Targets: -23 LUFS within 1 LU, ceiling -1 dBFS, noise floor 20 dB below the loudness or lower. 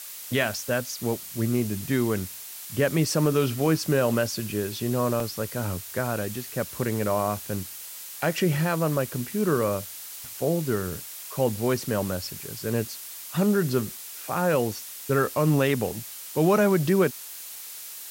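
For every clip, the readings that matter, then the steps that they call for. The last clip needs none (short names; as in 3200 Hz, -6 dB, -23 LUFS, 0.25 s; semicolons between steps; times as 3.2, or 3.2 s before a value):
dropouts 2; longest dropout 2.2 ms; noise floor -40 dBFS; noise floor target -47 dBFS; loudness -26.5 LUFS; peak -10.0 dBFS; loudness target -23.0 LUFS
-> interpolate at 5.2/14.72, 2.2 ms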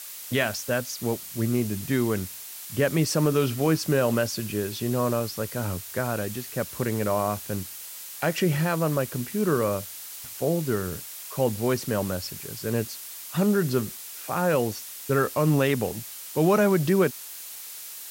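dropouts 0; noise floor -40 dBFS; noise floor target -47 dBFS
-> denoiser 7 dB, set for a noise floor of -40 dBFS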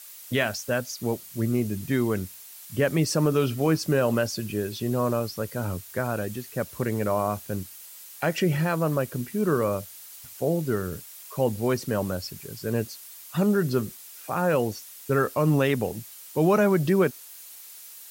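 noise floor -45 dBFS; noise floor target -47 dBFS
-> denoiser 6 dB, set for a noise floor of -45 dBFS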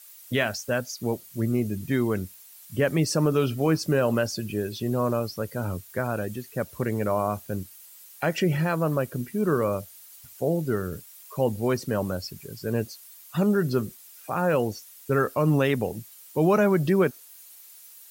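noise floor -49 dBFS; loudness -26.5 LUFS; peak -10.5 dBFS; loudness target -23.0 LUFS
-> gain +3.5 dB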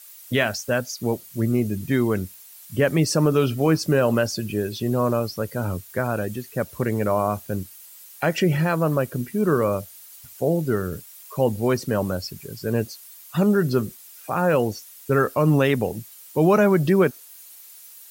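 loudness -23.0 LUFS; peak -7.0 dBFS; noise floor -46 dBFS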